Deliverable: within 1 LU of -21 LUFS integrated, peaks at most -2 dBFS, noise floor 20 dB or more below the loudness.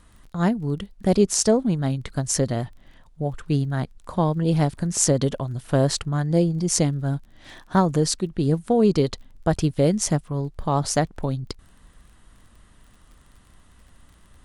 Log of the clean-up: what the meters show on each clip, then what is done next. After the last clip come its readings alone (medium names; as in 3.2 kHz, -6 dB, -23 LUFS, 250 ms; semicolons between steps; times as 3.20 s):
tick rate 25 per s; loudness -23.0 LUFS; peak level -2.0 dBFS; loudness target -21.0 LUFS
-> de-click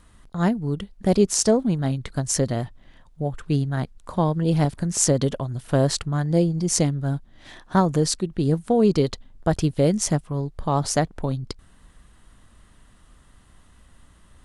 tick rate 0.069 per s; loudness -23.0 LUFS; peak level -2.0 dBFS; loudness target -21.0 LUFS
-> trim +2 dB; peak limiter -2 dBFS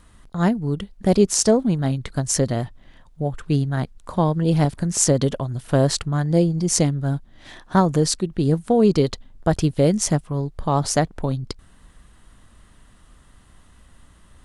loudness -21.0 LUFS; peak level -2.0 dBFS; noise floor -52 dBFS